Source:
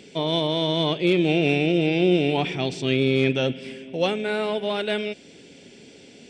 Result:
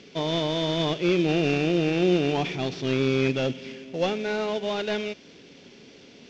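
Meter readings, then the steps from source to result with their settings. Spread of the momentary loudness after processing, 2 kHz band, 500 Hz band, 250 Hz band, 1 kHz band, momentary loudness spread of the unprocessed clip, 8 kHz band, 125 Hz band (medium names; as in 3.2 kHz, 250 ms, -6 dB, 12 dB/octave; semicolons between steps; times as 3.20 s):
8 LU, -3.5 dB, -2.5 dB, -2.5 dB, -2.0 dB, 7 LU, +1.5 dB, -2.5 dB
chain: CVSD coder 32 kbps; trim -2 dB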